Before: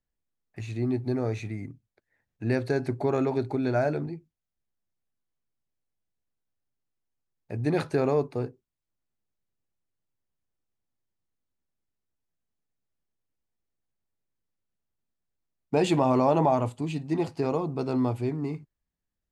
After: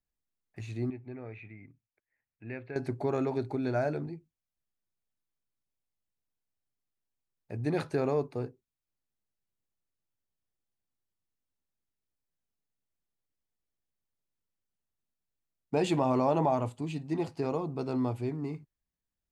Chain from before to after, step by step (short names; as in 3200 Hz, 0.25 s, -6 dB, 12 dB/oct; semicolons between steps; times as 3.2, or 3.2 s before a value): 0.9–2.76 ladder low-pass 2700 Hz, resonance 60%; gain -4.5 dB